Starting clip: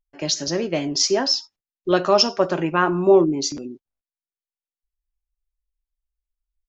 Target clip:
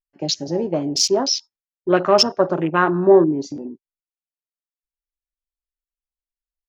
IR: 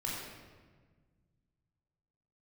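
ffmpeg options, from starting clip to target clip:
-af "afwtdn=0.0447,volume=2dB"

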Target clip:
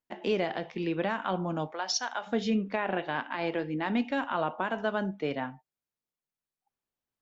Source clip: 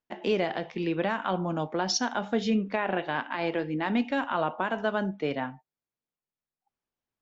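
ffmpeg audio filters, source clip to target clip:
-filter_complex "[0:a]asplit=3[a][b][c];[a]afade=t=out:st=1.71:d=0.02[d];[b]highpass=690,afade=t=in:st=1.71:d=0.02,afade=t=out:st=2.26:d=0.02[e];[c]afade=t=in:st=2.26:d=0.02[f];[d][e][f]amix=inputs=3:normalize=0,volume=-2dB"

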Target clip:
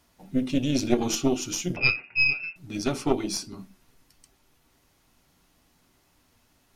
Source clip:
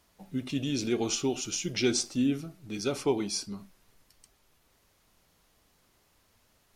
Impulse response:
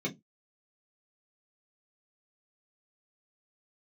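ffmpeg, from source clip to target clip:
-filter_complex "[0:a]asettb=1/sr,asplit=3[a][b][c];[a]atrim=end=1.764[d];[b]atrim=start=1.76:end=2.56,asetpts=PTS-STARTPTS,afade=t=in:d=0.004:c=qsin,afade=t=out:st=0.796:d=0.004:c=qsin,lowpass=f=2.4k:t=q:w=0.5098,lowpass=f=2.4k:t=q:w=0.6013,lowpass=f=2.4k:t=q:w=0.9,lowpass=f=2.4k:t=q:w=2.563,afreqshift=-2800[e];[c]atrim=start=2.556[f];[d][e]acrossfade=d=0.004:c1=hsin:c2=qsin[g];[g][f]acrossfade=d=0.004:c1=qsin:c2=hsin,asplit=2[h][i];[1:a]atrim=start_sample=2205,asetrate=52920,aresample=44100[j];[i][j]afir=irnorm=-1:irlink=0,volume=-11dB[k];[h][k]amix=inputs=2:normalize=0,aeval=exprs='0.211*(cos(1*acos(clip(val(0)/0.211,-1,1)))-cos(1*PI/2))+0.106*(cos(2*acos(clip(val(0)/0.211,-1,1)))-cos(2*PI/2))':c=same,volume=2.5dB"

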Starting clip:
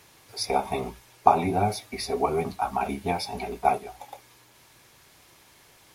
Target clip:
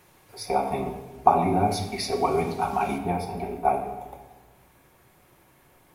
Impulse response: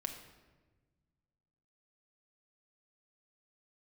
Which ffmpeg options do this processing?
-filter_complex "[0:a]asetnsamples=n=441:p=0,asendcmd='1.71 equalizer g 2;2.98 equalizer g -14',equalizer=f=4.9k:w=0.56:g=-9[a];[1:a]atrim=start_sample=2205[b];[a][b]afir=irnorm=-1:irlink=0,volume=2dB"

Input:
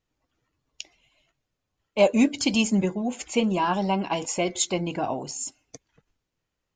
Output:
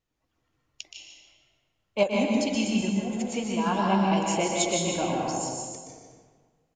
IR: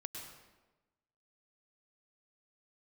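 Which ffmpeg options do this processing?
-filter_complex "[0:a]asettb=1/sr,asplit=3[a][b][c];[a]atrim=end=2.034[d];[b]atrim=start=2.03:end=3.66,asetpts=PTS-STARTPTS,afade=t=in:d=0.004:c=qsin,afade=t=out:st=1.626:d=0.004:c=qsin,acompressor=threshold=-35dB:ratio=1.5[e];[c]atrim=start=3.656[f];[d][e]acrossfade=d=0.004:c1=hsin:c2=qsin[g];[g][f]acrossfade=d=0.004:c1=qsin:c2=hsin,aecho=1:1:122.4|154.5:0.398|0.282[h];[1:a]atrim=start_sample=2205,asetrate=30870,aresample=44100[i];[h][i]afir=irnorm=-1:irlink=0"

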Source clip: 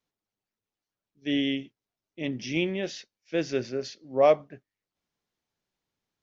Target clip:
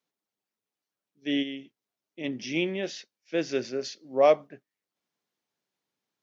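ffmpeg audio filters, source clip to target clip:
-filter_complex "[0:a]highpass=180,asplit=3[a][b][c];[a]afade=t=out:st=1.42:d=0.02[d];[b]acompressor=threshold=-35dB:ratio=3,afade=t=in:st=1.42:d=0.02,afade=t=out:st=2.23:d=0.02[e];[c]afade=t=in:st=2.23:d=0.02[f];[d][e][f]amix=inputs=3:normalize=0,asettb=1/sr,asplit=3[g][h][i];[g]atrim=end=3.514[j];[h]atrim=start=3.51:end=4.47,asetpts=PTS-STARTPTS,afade=t=in:d=0.004:c=qsin,afade=t=out:st=0.956:d=0.004:c=qsin,highshelf=f=5.2k:g=6[k];[i]atrim=start=4.466[l];[j][k]acrossfade=d=0.004:c1=hsin:c2=qsin[m];[m][l]acrossfade=d=0.004:c1=qsin:c2=hsin"

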